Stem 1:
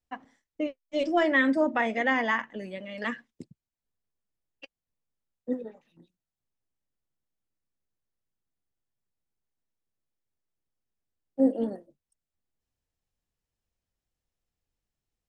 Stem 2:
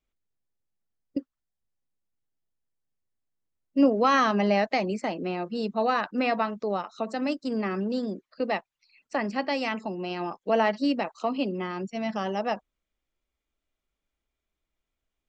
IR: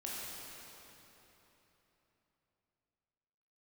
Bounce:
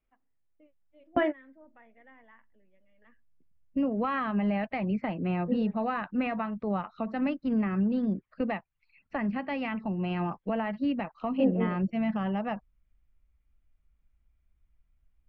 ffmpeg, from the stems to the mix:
-filter_complex "[0:a]volume=-2dB[a];[1:a]asubboost=boost=9:cutoff=130,alimiter=limit=-20.5dB:level=0:latency=1:release=343,volume=0.5dB,asplit=2[b][c];[c]apad=whole_len=674097[d];[a][d]sidechaingate=range=-29dB:threshold=-44dB:ratio=16:detection=peak[e];[e][b]amix=inputs=2:normalize=0,lowpass=f=2.7k:w=0.5412,lowpass=f=2.7k:w=1.3066"

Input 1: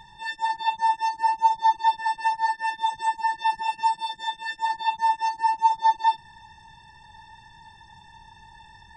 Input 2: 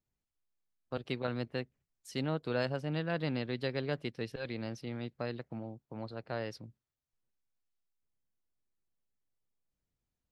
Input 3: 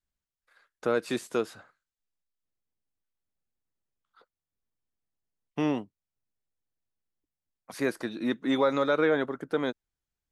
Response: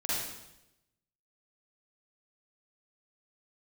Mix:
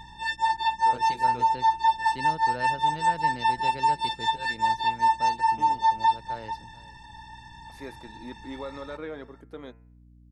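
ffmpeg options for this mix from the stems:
-filter_complex "[0:a]volume=2.5dB,asplit=2[a][b];[b]volume=-16.5dB[c];[1:a]volume=-4dB,asplit=2[d][e];[e]volume=-20.5dB[f];[2:a]bandreject=f=113.5:t=h:w=4,bandreject=f=227:t=h:w=4,bandreject=f=340.5:t=h:w=4,bandreject=f=454:t=h:w=4,bandreject=f=567.5:t=h:w=4,bandreject=f=681:t=h:w=4,bandreject=f=794.5:t=h:w=4,bandreject=f=908:t=h:w=4,bandreject=f=1.0215k:t=h:w=4,bandreject=f=1.135k:t=h:w=4,bandreject=f=1.2485k:t=h:w=4,bandreject=f=1.362k:t=h:w=4,bandreject=f=1.4755k:t=h:w=4,bandreject=f=1.589k:t=h:w=4,bandreject=f=1.7025k:t=h:w=4,bandreject=f=1.816k:t=h:w=4,bandreject=f=1.9295k:t=h:w=4,bandreject=f=2.043k:t=h:w=4,bandreject=f=2.1565k:t=h:w=4,bandreject=f=2.27k:t=h:w=4,bandreject=f=2.3835k:t=h:w=4,bandreject=f=2.497k:t=h:w=4,bandreject=f=2.6105k:t=h:w=4,bandreject=f=2.724k:t=h:w=4,bandreject=f=2.8375k:t=h:w=4,bandreject=f=2.951k:t=h:w=4,volume=-12.5dB[g];[a][g]amix=inputs=2:normalize=0,bandreject=f=1.5k:w=13,alimiter=limit=-14.5dB:level=0:latency=1:release=185,volume=0dB[h];[c][f]amix=inputs=2:normalize=0,aecho=0:1:440:1[i];[d][h][i]amix=inputs=3:normalize=0,aeval=exprs='val(0)+0.00251*(sin(2*PI*60*n/s)+sin(2*PI*2*60*n/s)/2+sin(2*PI*3*60*n/s)/3+sin(2*PI*4*60*n/s)/4+sin(2*PI*5*60*n/s)/5)':c=same"

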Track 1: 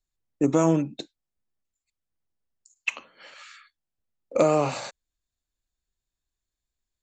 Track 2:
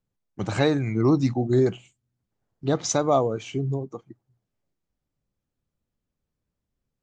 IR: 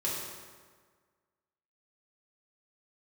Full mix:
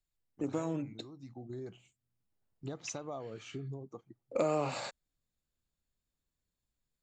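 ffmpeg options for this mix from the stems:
-filter_complex "[0:a]bandreject=f=6.1k:w=6.3,acompressor=threshold=-28dB:ratio=2,volume=-3.5dB[a];[1:a]acompressor=threshold=-28dB:ratio=8,volume=-10dB,afade=t=in:st=1.09:d=0.68:silence=0.281838,asplit=2[b][c];[c]apad=whole_len=309788[d];[a][d]sidechaincompress=threshold=-51dB:ratio=8:attack=16:release=531[e];[e][b]amix=inputs=2:normalize=0"

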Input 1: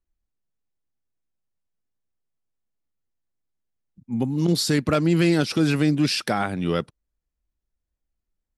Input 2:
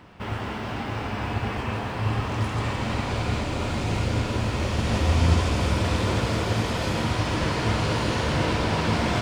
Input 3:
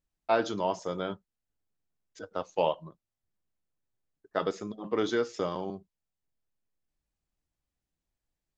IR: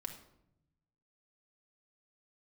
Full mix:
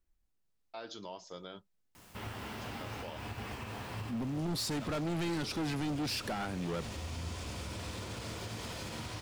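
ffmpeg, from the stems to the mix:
-filter_complex "[0:a]volume=2dB[a];[1:a]acrusher=bits=8:mix=0:aa=0.000001,highshelf=f=4.1k:g=11.5,adelay=1950,volume=-10.5dB[b];[2:a]equalizer=f=4.4k:t=o:w=1.4:g=12,adelay=450,volume=-12.5dB[c];[a][b][c]amix=inputs=3:normalize=0,asoftclip=type=hard:threshold=-21dB,alimiter=level_in=8dB:limit=-24dB:level=0:latency=1:release=218,volume=-8dB"

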